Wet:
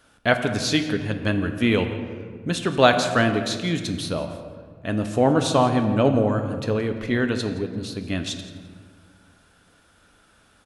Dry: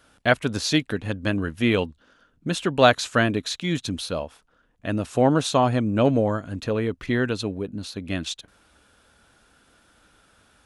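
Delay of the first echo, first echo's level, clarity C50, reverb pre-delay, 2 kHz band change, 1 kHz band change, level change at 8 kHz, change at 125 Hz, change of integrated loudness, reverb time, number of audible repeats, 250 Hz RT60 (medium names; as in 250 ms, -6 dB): 170 ms, -18.0 dB, 8.0 dB, 4 ms, +0.5 dB, +1.0 dB, +0.5 dB, +1.5 dB, +1.0 dB, 1.7 s, 1, 2.3 s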